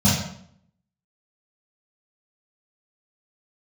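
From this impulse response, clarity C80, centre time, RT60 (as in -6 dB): 5.5 dB, 58 ms, 0.65 s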